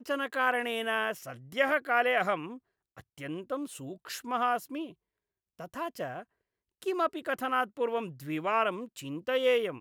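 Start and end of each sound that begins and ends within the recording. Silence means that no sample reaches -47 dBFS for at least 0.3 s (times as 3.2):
2.97–4.92
5.59–6.23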